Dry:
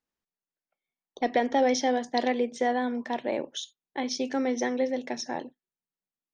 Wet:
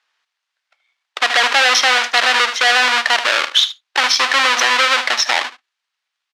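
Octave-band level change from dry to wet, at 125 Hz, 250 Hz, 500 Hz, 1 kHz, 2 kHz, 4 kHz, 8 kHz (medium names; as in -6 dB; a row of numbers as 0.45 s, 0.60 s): no reading, -9.0 dB, +1.5 dB, +12.5 dB, +23.5 dB, +24.5 dB, +17.0 dB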